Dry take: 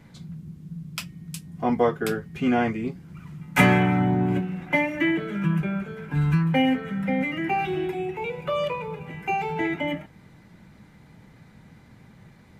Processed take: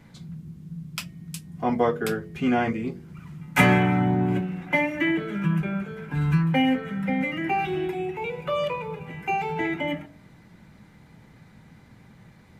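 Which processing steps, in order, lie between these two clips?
de-hum 47.65 Hz, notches 14

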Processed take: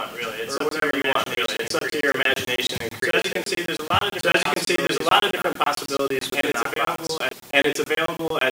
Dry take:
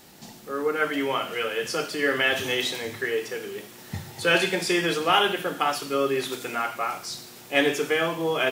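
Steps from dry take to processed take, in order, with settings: harmonic-percussive split percussive +6 dB; reverse echo 1177 ms -4 dB; crackling interface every 0.11 s, samples 1024, zero, from 0.58 s

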